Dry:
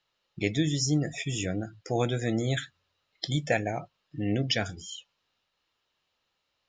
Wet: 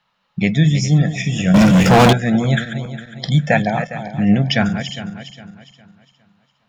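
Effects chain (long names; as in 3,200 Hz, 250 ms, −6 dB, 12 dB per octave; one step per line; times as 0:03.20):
feedback delay that plays each chunk backwards 204 ms, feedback 58%, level −9.5 dB
drawn EQ curve 110 Hz 0 dB, 190 Hz +15 dB, 320 Hz −7 dB, 930 Hz +9 dB, 7,200 Hz −6 dB
0:01.54–0:02.13: leveller curve on the samples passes 5
level +7.5 dB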